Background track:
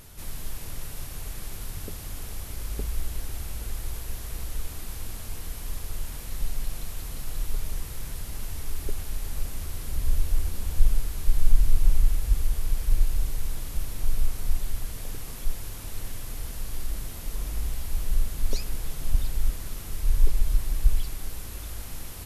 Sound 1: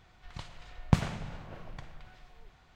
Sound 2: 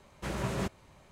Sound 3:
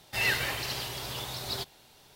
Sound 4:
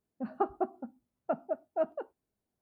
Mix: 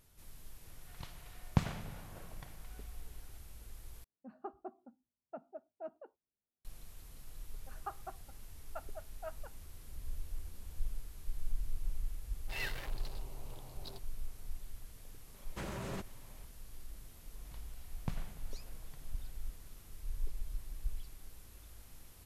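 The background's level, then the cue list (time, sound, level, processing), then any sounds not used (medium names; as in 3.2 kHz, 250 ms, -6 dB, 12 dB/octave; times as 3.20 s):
background track -18 dB
0.64 s: add 1 -6 dB
4.04 s: replace with 4 -15 dB
7.46 s: add 4 -3 dB + high-pass 1.3 kHz
12.35 s: add 3 -12 dB + local Wiener filter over 25 samples
15.34 s: add 2 -4 dB + peak limiter -29 dBFS
17.15 s: add 1 -16 dB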